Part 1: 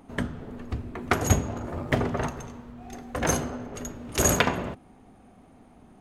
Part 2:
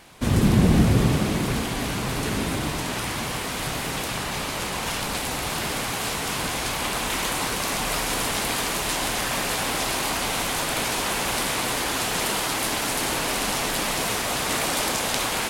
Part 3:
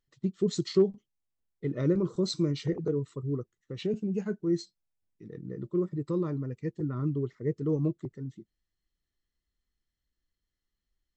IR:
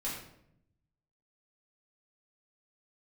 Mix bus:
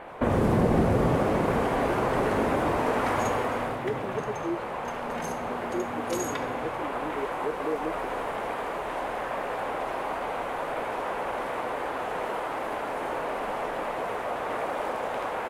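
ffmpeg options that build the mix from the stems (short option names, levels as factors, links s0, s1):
-filter_complex "[0:a]highpass=f=110:w=0.5412,highpass=f=110:w=1.3066,acompressor=threshold=0.02:ratio=2.5,asplit=2[s0][s1];[s1]adelay=2.9,afreqshift=0.36[s2];[s0][s2]amix=inputs=2:normalize=1,adelay=1950,volume=0.668,asplit=2[s3][s4];[s4]volume=0.562[s5];[1:a]volume=0.891,afade=t=out:st=3.22:d=0.54:silence=0.237137,asplit=3[s6][s7][s8];[s7]volume=0.112[s9];[s8]volume=0.15[s10];[2:a]highpass=f=210:w=0.5412,highpass=f=210:w=1.3066,volume=0.316[s11];[s6][s11]amix=inputs=2:normalize=0,firequalizer=gain_entry='entry(160,0);entry(500,15);entry(6200,-26)':delay=0.05:min_phase=1,acompressor=threshold=0.0562:ratio=2.5,volume=1[s12];[3:a]atrim=start_sample=2205[s13];[s5][s9]amix=inputs=2:normalize=0[s14];[s14][s13]afir=irnorm=-1:irlink=0[s15];[s10]aecho=0:1:81:1[s16];[s3][s12][s15][s16]amix=inputs=4:normalize=0"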